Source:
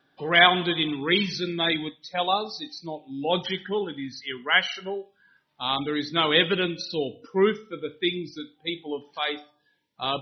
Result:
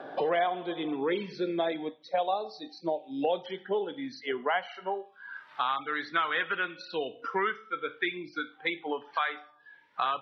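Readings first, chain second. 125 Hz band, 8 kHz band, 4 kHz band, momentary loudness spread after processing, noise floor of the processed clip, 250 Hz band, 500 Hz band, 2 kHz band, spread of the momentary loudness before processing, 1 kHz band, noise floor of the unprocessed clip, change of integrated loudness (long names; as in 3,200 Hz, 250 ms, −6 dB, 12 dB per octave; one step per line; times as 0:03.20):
−14.5 dB, can't be measured, −15.0 dB, 9 LU, −59 dBFS, −7.0 dB, −4.0 dB, −7.0 dB, 14 LU, −2.5 dB, −69 dBFS, −7.0 dB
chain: band-pass filter sweep 600 Hz → 1,400 Hz, 0:04.27–0:05.49
multiband upward and downward compressor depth 100%
level +3.5 dB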